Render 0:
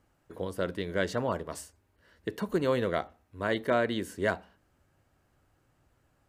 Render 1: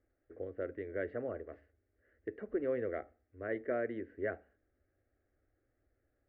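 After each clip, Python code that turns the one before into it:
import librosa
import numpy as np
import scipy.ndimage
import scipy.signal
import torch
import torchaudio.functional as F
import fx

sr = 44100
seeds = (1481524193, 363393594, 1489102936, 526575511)

y = scipy.signal.sosfilt(scipy.signal.cheby1(4, 1.0, 2000.0, 'lowpass', fs=sr, output='sos'), x)
y = fx.fixed_phaser(y, sr, hz=400.0, stages=4)
y = y * 10.0 ** (-5.0 / 20.0)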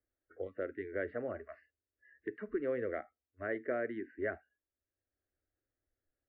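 y = fx.noise_reduce_blind(x, sr, reduce_db=25)
y = fx.peak_eq(y, sr, hz=1700.0, db=3.0, octaves=1.5)
y = fx.band_squash(y, sr, depth_pct=40)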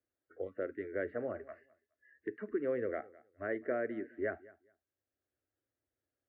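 y = scipy.signal.sosfilt(scipy.signal.butter(2, 95.0, 'highpass', fs=sr, output='sos'), x)
y = fx.high_shelf(y, sr, hz=3000.0, db=-8.5)
y = fx.echo_feedback(y, sr, ms=209, feedback_pct=19, wet_db=-21.5)
y = y * 10.0 ** (1.0 / 20.0)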